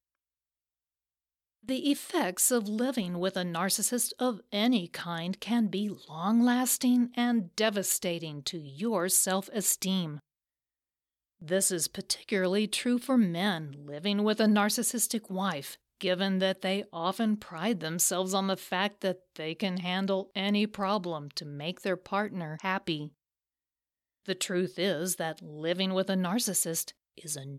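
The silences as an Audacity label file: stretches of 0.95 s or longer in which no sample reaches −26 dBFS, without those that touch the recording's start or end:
10.020000	11.480000	silence
22.950000	24.290000	silence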